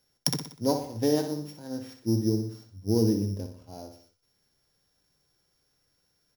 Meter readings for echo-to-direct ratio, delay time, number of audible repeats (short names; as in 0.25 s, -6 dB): -7.0 dB, 61 ms, 4